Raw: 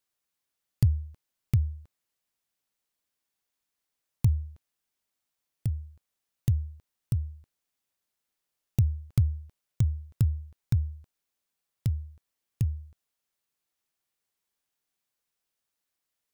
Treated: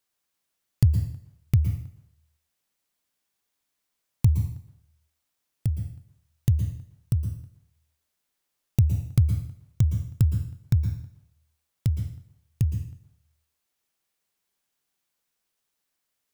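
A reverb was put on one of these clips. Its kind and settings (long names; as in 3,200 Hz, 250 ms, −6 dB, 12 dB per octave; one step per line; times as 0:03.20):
dense smooth reverb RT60 0.63 s, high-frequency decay 0.9×, pre-delay 105 ms, DRR 6.5 dB
level +3.5 dB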